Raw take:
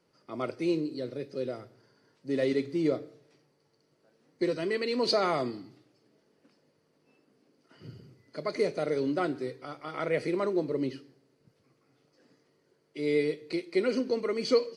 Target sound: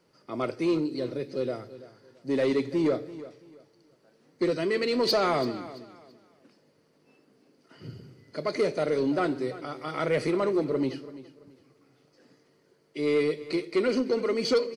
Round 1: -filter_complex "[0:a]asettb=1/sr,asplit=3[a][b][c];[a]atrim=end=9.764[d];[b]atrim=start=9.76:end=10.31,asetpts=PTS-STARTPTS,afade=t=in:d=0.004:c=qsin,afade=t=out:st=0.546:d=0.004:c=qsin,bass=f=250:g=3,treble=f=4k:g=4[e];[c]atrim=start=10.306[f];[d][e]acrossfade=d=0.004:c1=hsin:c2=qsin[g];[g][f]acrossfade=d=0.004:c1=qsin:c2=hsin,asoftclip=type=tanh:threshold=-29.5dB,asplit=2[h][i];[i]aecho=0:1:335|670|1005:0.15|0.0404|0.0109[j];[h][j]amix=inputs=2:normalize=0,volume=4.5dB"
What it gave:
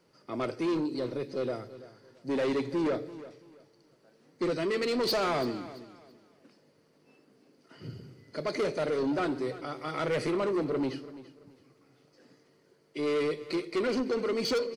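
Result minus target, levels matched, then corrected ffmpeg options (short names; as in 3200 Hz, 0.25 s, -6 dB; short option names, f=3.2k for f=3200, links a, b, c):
soft clip: distortion +7 dB
-filter_complex "[0:a]asettb=1/sr,asplit=3[a][b][c];[a]atrim=end=9.764[d];[b]atrim=start=9.76:end=10.31,asetpts=PTS-STARTPTS,afade=t=in:d=0.004:c=qsin,afade=t=out:st=0.546:d=0.004:c=qsin,bass=f=250:g=3,treble=f=4k:g=4[e];[c]atrim=start=10.306[f];[d][e]acrossfade=d=0.004:c1=hsin:c2=qsin[g];[g][f]acrossfade=d=0.004:c1=qsin:c2=hsin,asoftclip=type=tanh:threshold=-22dB,asplit=2[h][i];[i]aecho=0:1:335|670|1005:0.15|0.0404|0.0109[j];[h][j]amix=inputs=2:normalize=0,volume=4.5dB"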